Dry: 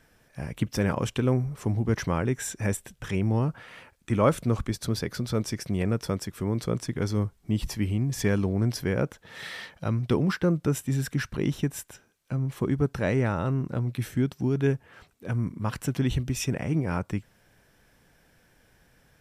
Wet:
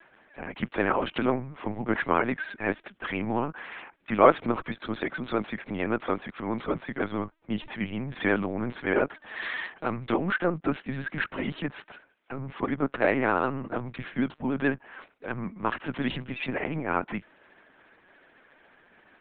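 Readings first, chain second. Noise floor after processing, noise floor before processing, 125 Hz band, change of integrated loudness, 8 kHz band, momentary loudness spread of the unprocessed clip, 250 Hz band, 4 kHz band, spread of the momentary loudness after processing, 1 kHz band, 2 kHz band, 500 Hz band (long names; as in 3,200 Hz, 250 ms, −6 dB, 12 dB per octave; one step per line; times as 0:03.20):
−64 dBFS, −63 dBFS, −11.5 dB, −1.0 dB, below −40 dB, 9 LU, −2.0 dB, −2.5 dB, 10 LU, +7.0 dB, +6.5 dB, +1.5 dB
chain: parametric band 350 Hz −13 dB 0.66 octaves
linear-prediction vocoder at 8 kHz pitch kept
three-way crossover with the lows and the highs turned down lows −22 dB, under 240 Hz, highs −17 dB, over 3,000 Hz
pitch vibrato 14 Hz 76 cents
level +8 dB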